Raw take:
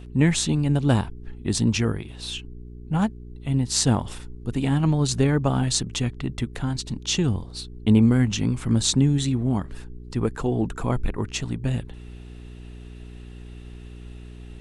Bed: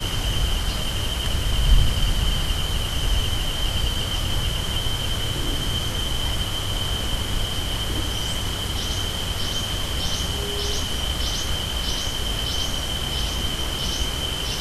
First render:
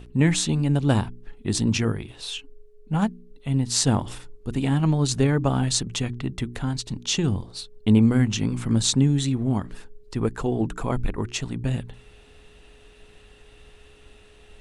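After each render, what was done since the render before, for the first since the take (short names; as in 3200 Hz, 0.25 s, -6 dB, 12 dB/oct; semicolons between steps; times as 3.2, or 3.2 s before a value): de-hum 60 Hz, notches 6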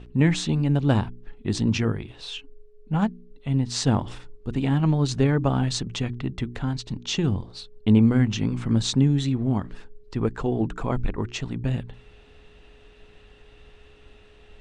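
air absorption 100 m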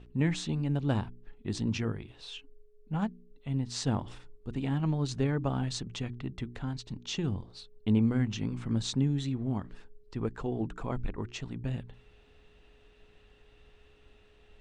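gain -8.5 dB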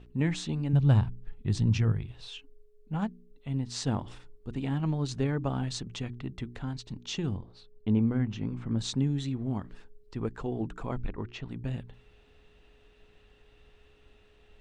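0.73–2.28 resonant low shelf 190 Hz +8 dB, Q 1.5; 7.37–8.79 LPF 1800 Hz 6 dB/oct; 10.94–11.48 LPF 6900 Hz -> 3100 Hz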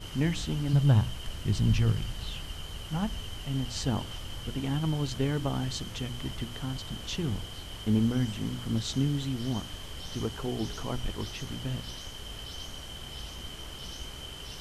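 add bed -16 dB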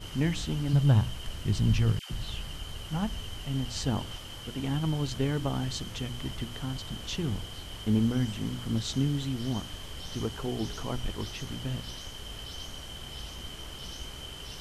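1.99–2.76 dispersion lows, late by 0.113 s, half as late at 900 Hz; 4.16–4.59 low shelf 130 Hz -8 dB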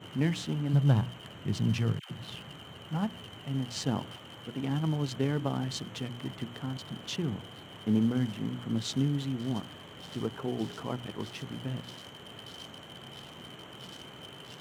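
Wiener smoothing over 9 samples; HPF 120 Hz 24 dB/oct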